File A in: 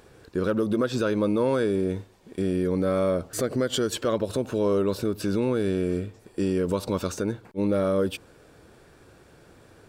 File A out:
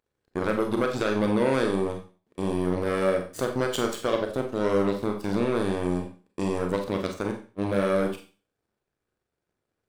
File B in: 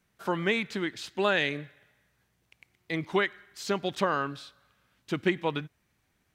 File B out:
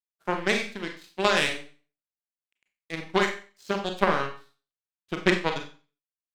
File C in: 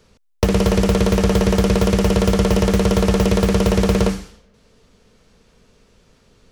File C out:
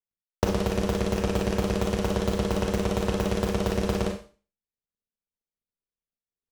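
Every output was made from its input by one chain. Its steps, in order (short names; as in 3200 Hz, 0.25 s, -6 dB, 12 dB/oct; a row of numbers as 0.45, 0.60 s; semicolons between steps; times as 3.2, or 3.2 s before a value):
power-law curve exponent 2; Schroeder reverb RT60 0.37 s, combs from 30 ms, DRR 3.5 dB; match loudness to -27 LUFS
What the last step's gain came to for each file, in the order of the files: +3.5, +9.0, -2.5 dB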